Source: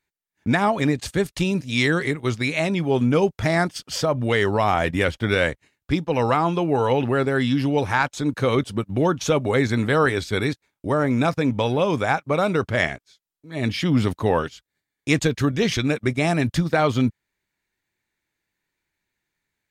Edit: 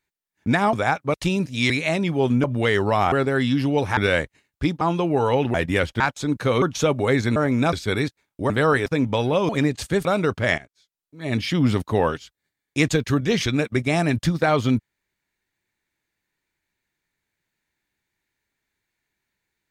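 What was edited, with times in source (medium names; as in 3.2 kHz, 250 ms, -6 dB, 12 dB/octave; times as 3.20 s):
0.73–1.29 s: swap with 11.95–12.36 s
1.85–2.41 s: delete
3.15–4.11 s: delete
4.79–5.25 s: swap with 7.12–7.97 s
6.09–6.39 s: delete
8.59–9.08 s: delete
9.82–10.18 s: swap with 10.95–11.32 s
12.89–13.53 s: fade in, from -14.5 dB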